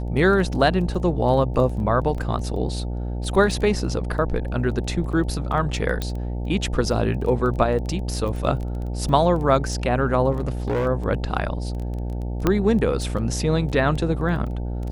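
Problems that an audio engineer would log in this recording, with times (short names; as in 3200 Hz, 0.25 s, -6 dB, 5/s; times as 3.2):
buzz 60 Hz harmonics 15 -27 dBFS
crackle 10/s -29 dBFS
2.18 gap 2.6 ms
6.02 pop -12 dBFS
10.31–10.87 clipped -19 dBFS
12.47 pop -6 dBFS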